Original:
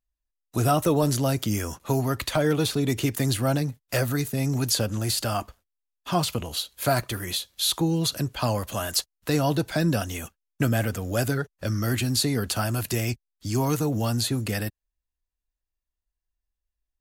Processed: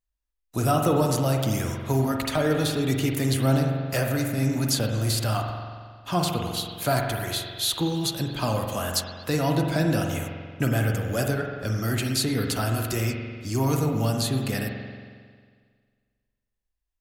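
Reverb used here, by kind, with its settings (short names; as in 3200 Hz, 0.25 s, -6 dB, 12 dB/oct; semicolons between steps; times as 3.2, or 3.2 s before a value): spring tank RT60 1.8 s, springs 45 ms, chirp 75 ms, DRR 2 dB; gain -1.5 dB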